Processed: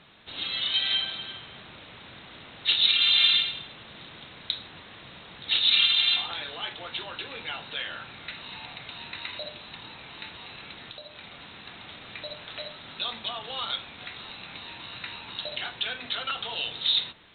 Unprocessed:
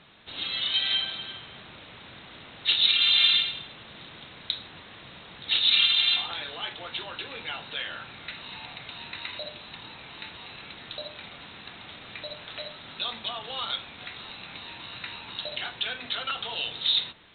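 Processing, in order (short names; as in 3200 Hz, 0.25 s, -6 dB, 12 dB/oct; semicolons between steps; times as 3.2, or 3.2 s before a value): 10.88–11.68 compressor 6:1, threshold -40 dBFS, peak gain reduction 8 dB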